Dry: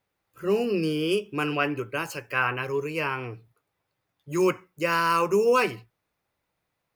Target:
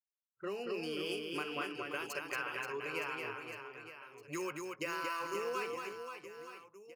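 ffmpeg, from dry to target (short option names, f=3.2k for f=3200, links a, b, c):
-af "agate=range=-33dB:threshold=-44dB:ratio=3:detection=peak,anlmdn=1,highpass=f=820:p=1,acompressor=threshold=-39dB:ratio=6,aecho=1:1:230|529|917.7|1423|2080:0.631|0.398|0.251|0.158|0.1,volume=1dB"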